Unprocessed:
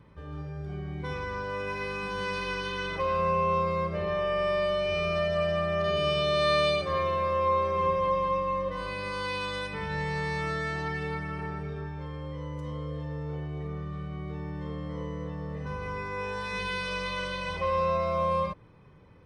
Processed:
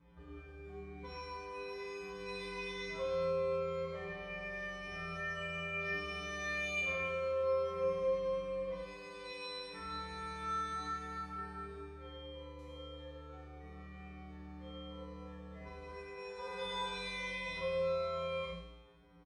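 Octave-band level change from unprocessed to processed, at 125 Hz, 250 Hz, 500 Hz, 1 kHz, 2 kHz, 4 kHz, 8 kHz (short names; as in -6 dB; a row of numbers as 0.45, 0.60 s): -16.0 dB, -12.5 dB, -9.0 dB, -14.0 dB, -7.5 dB, -10.5 dB, n/a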